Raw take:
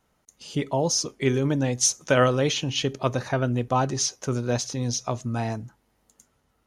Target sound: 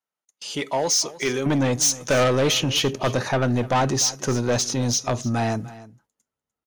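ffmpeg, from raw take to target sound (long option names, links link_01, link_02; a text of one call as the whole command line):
ffmpeg -i in.wav -af "asetnsamples=nb_out_samples=441:pad=0,asendcmd='1.46 highpass f 130',highpass=frequency=850:poles=1,agate=range=-27dB:threshold=-50dB:ratio=16:detection=peak,asoftclip=type=tanh:threshold=-24dB,aecho=1:1:298:0.126,volume=8.5dB" out.wav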